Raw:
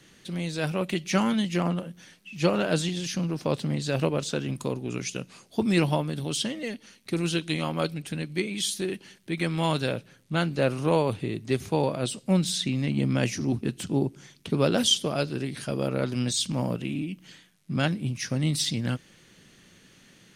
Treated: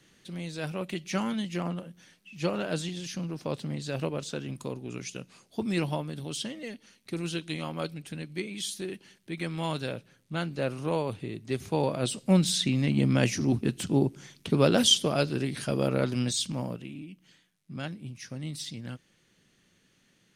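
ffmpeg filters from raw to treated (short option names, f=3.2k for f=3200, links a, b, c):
-af "volume=1dB,afade=t=in:st=11.45:d=0.8:silence=0.446684,afade=t=out:st=15.94:d=0.98:silence=0.251189"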